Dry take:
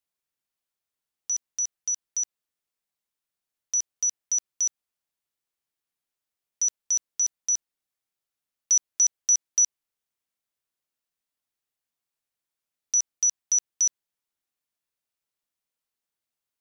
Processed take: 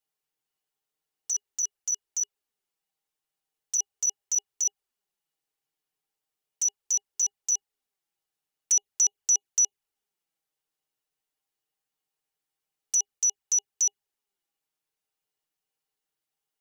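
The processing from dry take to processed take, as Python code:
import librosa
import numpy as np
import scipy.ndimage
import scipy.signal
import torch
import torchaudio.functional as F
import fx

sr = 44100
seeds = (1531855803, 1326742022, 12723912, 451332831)

p1 = np.clip(x, -10.0 ** (-30.5 / 20.0), 10.0 ** (-30.5 / 20.0))
p2 = x + (p1 * 10.0 ** (-8.0 / 20.0))
p3 = fx.env_flanger(p2, sr, rest_ms=6.5, full_db=-19.5)
y = fx.small_body(p3, sr, hz=(410.0, 800.0, 2900.0), ring_ms=80, db=11)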